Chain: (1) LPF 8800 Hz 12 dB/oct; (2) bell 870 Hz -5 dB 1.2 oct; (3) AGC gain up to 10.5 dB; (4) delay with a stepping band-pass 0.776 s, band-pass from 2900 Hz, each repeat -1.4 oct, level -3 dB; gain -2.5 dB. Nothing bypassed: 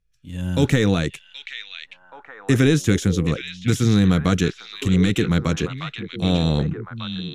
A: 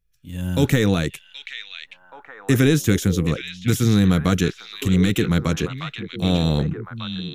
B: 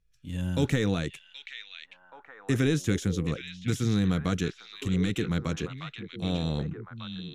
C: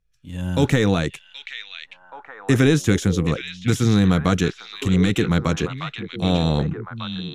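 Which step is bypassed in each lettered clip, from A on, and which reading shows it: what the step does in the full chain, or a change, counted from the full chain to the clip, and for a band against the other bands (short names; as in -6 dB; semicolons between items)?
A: 1, 8 kHz band +1.5 dB; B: 3, loudness change -9.0 LU; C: 2, 1 kHz band +3.5 dB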